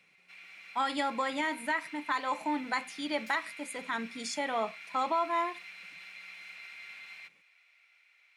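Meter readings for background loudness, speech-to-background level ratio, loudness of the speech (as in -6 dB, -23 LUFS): -46.5 LUFS, 13.5 dB, -33.0 LUFS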